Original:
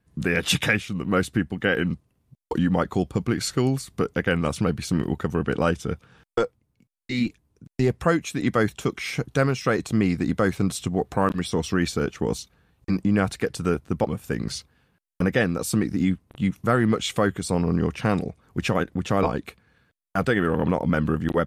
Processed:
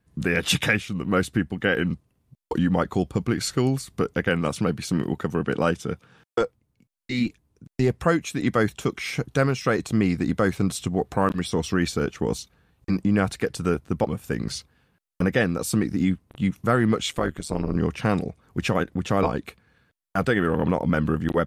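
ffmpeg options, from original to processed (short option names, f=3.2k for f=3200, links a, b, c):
-filter_complex "[0:a]asettb=1/sr,asplit=3[a][b][c];[a]atrim=end=4.294[d];[b]atrim=start=4.29:end=6.41,asetpts=PTS-STARTPTS,afade=t=in:d=0.004:c=qsin,afade=t=out:st=2.116:d=0.004:c=qsin,highpass=110[e];[c]atrim=start=6.406[f];[d][e]acrossfade=d=0.004:c1=hsin:c2=qsin[g];[g][f]acrossfade=d=0.004:c1=qsin:c2=hsin,asettb=1/sr,asplit=3[h][i][j];[h]atrim=end=17.104[k];[i]atrim=start=17.1:end=17.76,asetpts=PTS-STARTPTS,afade=t=in:d=0.004:c=qsin,afade=t=out:st=0.656:d=0.004:c=qsin,tremolo=f=150:d=0.857[l];[j]atrim=start=17.756[m];[k][l]acrossfade=d=0.004:c1=hsin:c2=qsin[n];[n][m]acrossfade=d=0.004:c1=qsin:c2=hsin"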